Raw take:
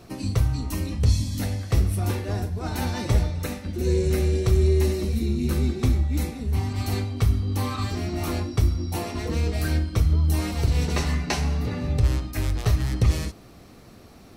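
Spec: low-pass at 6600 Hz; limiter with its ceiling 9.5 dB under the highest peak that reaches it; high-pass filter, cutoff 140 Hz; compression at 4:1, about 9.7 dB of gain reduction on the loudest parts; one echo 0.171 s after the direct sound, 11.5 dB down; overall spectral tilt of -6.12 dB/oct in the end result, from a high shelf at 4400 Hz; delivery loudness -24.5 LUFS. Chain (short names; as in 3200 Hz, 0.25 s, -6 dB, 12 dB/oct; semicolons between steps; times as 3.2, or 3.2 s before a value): HPF 140 Hz; LPF 6600 Hz; high shelf 4400 Hz -6.5 dB; compressor 4:1, threshold -34 dBFS; limiter -29.5 dBFS; echo 0.171 s -11.5 dB; gain +14 dB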